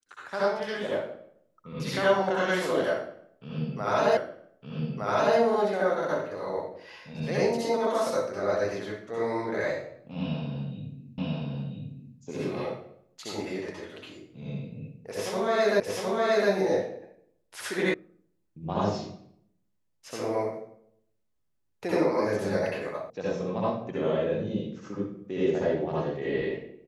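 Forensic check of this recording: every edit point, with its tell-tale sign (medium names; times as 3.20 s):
4.17 s: repeat of the last 1.21 s
11.18 s: repeat of the last 0.99 s
15.80 s: repeat of the last 0.71 s
17.94 s: sound stops dead
23.10 s: sound stops dead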